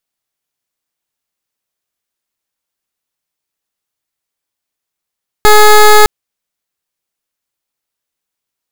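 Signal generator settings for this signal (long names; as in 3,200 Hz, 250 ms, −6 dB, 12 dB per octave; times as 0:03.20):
pulse wave 423 Hz, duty 15% −3 dBFS 0.61 s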